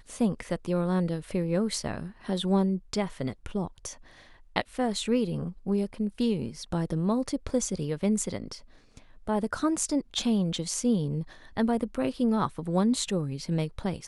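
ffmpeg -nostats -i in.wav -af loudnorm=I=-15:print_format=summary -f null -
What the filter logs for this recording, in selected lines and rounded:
Input Integrated:    -29.1 LUFS
Input True Peak:      -8.8 dBTP
Input LRA:             2.3 LU
Input Threshold:     -39.4 LUFS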